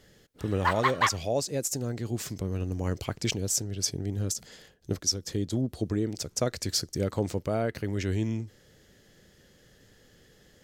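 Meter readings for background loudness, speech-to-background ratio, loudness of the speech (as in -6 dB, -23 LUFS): -28.0 LUFS, -2.5 dB, -30.5 LUFS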